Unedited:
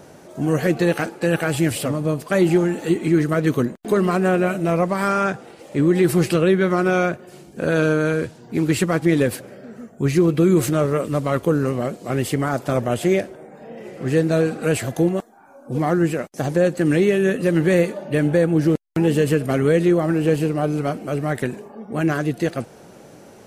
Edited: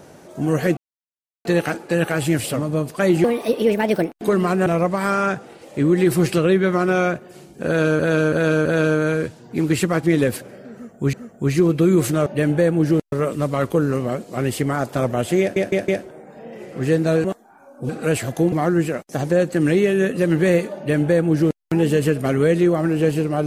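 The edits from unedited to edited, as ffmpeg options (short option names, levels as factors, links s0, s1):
-filter_complex "[0:a]asplit=17[s0][s1][s2][s3][s4][s5][s6][s7][s8][s9][s10][s11][s12][s13][s14][s15][s16];[s0]atrim=end=0.77,asetpts=PTS-STARTPTS,afade=t=out:st=0.766:d=0.004:c=hsin,apad=pad_dur=0.68[s17];[s1]atrim=start=0.77:end=2.564,asetpts=PTS-STARTPTS,afade=t=in:d=0.004:c=hsin[s18];[s2]atrim=start=2.56:end=3.76,asetpts=PTS-STARTPTS,asetrate=59976,aresample=44100[s19];[s3]atrim=start=3.756:end=4.302[s20];[s4]atrim=start=4.638:end=7.972[s21];[s5]atrim=start=7.638:end=7.972[s22];[s6]atrim=start=7.638:end=7.972[s23];[s7]atrim=start=7.638:end=10.122[s24];[s8]atrim=start=9.718:end=10.852[s25];[s9]atrim=start=18.018:end=18.882[s26];[s10]atrim=start=10.848:end=13.292[s27];[s11]atrim=start=13.128:end=13.292[s28];[s12]atrim=start=13.128:end=13.292[s29];[s13]atrim=start=13.128:end=14.492[s30];[s14]atrim=start=15.118:end=15.772[s31];[s15]atrim=start=14.488:end=15.122[s32];[s16]atrim=start=15.768[s33];[s17][s18]concat=n=2:v=0:a=1[s34];[s34][s19]acrossfade=d=0.004:c1=hsin:c2=hsin[s35];[s35][s20]acrossfade=d=0.004:c1=hsin:c2=hsin[s36];[s36][s21]acrossfade=d=0.004:c1=hsin:c2=hsin[s37];[s37][s22]acrossfade=d=0.004:c1=hsin:c2=hsin[s38];[s38][s23]acrossfade=d=0.004:c1=hsin:c2=hsin[s39];[s39][s24]acrossfade=d=0.004:c1=hsin:c2=hsin[s40];[s40][s25]acrossfade=d=0.004:c1=hsin:c2=hsin[s41];[s41][s26]acrossfade=d=0.004:c1=hsin:c2=hsin[s42];[s42][s27]acrossfade=d=0.004:c1=hsin:c2=hsin[s43];[s43][s28]acrossfade=d=0.004:c1=hsin:c2=hsin[s44];[s44][s29]acrossfade=d=0.004:c1=hsin:c2=hsin[s45];[s45][s30]acrossfade=d=0.004:c1=hsin:c2=hsin[s46];[s46][s31]acrossfade=d=0.004:c1=hsin:c2=hsin[s47];[s47][s32]acrossfade=d=0.004:c1=hsin:c2=hsin[s48];[s48][s33]acrossfade=d=0.004:c1=hsin:c2=hsin"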